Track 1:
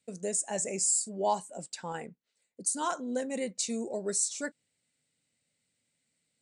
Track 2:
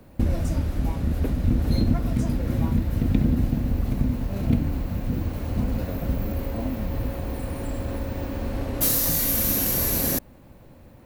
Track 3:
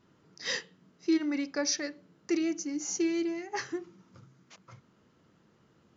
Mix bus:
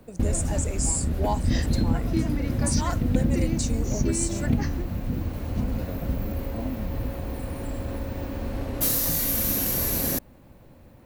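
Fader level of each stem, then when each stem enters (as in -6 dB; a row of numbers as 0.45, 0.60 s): 0.0, -2.0, -3.0 dB; 0.00, 0.00, 1.05 s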